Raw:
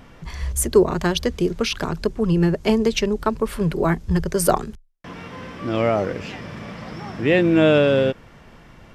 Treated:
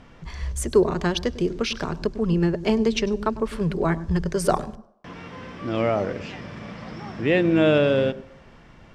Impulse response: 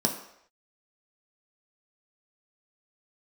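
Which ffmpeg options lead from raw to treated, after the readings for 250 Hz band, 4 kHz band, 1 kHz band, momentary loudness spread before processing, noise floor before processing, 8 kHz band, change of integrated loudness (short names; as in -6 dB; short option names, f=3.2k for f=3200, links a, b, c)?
-2.5 dB, -3.0 dB, -3.0 dB, 18 LU, -47 dBFS, -7.5 dB, -3.0 dB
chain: -filter_complex "[0:a]lowpass=7.3k,asplit=2[a][b];[1:a]atrim=start_sample=2205,adelay=99[c];[b][c]afir=irnorm=-1:irlink=0,volume=-28.5dB[d];[a][d]amix=inputs=2:normalize=0,volume=-3dB"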